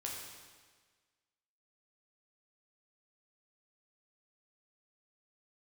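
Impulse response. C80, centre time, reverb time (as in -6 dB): 3.0 dB, 74 ms, 1.5 s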